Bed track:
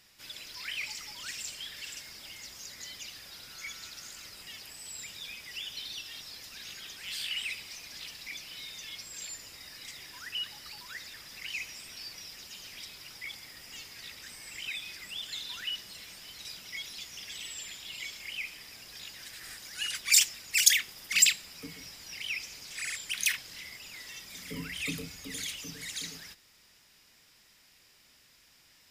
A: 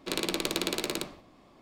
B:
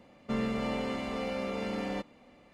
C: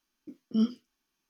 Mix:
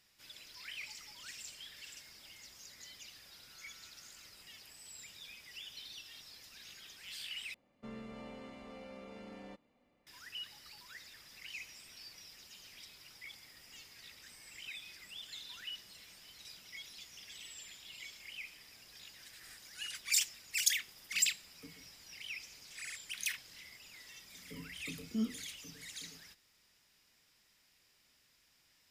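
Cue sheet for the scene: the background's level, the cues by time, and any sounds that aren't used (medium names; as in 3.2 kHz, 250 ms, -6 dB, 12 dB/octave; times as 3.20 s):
bed track -9 dB
7.54 s: replace with B -16 dB
24.60 s: add C -9 dB
not used: A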